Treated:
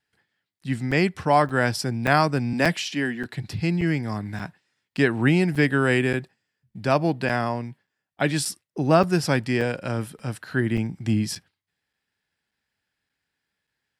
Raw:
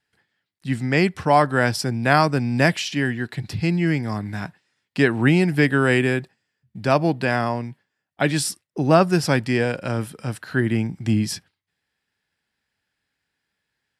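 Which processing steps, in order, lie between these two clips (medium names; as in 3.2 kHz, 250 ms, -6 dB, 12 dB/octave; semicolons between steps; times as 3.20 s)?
2.53–3.26 s: steep high-pass 150 Hz; crackling interface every 0.58 s, samples 256, zero, from 0.91 s; trim -2.5 dB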